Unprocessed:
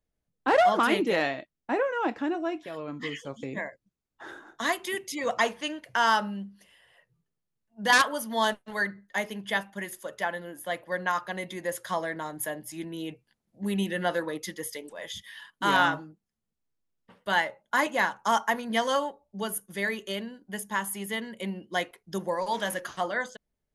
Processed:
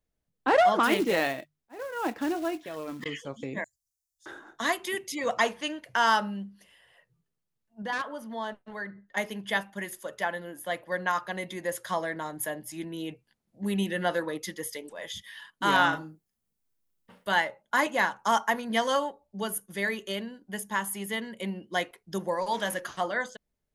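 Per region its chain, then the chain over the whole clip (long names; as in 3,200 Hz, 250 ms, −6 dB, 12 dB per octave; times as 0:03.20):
0:00.84–0:03.06: mains-hum notches 50/100/150 Hz + volume swells 466 ms + floating-point word with a short mantissa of 2 bits
0:03.64–0:04.26: inverse Chebyshev band-stop filter 210–2,300 Hz, stop band 50 dB + tilt shelving filter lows −9.5 dB, about 1,100 Hz
0:07.82–0:09.17: low-pass filter 1,700 Hz 6 dB per octave + downward compressor 1.5 to 1, threshold −43 dBFS
0:15.89–0:17.29: high-shelf EQ 8,900 Hz +12 dB + double-tracking delay 38 ms −7 dB
whole clip: no processing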